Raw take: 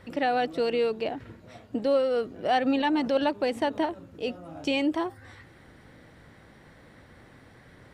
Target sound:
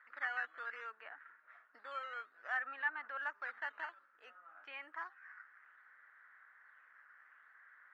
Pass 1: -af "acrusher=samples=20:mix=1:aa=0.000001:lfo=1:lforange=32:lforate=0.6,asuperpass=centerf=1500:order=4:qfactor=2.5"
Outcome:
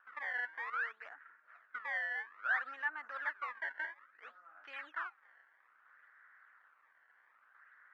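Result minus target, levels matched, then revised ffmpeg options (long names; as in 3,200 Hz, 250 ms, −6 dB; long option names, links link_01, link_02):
sample-and-hold swept by an LFO: distortion +10 dB
-af "acrusher=samples=7:mix=1:aa=0.000001:lfo=1:lforange=11.2:lforate=0.6,asuperpass=centerf=1500:order=4:qfactor=2.5"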